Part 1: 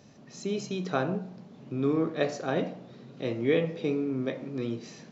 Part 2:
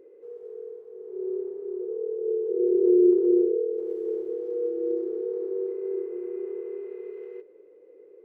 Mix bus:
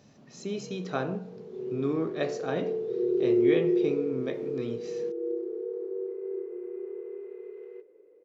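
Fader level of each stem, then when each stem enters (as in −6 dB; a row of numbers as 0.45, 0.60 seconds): −2.5, −4.5 decibels; 0.00, 0.40 seconds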